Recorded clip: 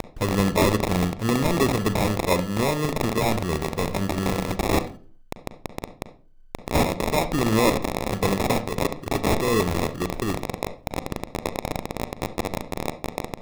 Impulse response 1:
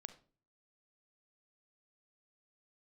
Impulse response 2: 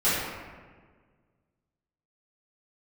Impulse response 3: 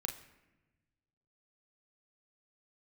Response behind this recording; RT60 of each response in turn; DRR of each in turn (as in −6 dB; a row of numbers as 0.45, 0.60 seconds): 1; 0.40, 1.6, 1.1 seconds; 11.0, −14.0, 4.0 decibels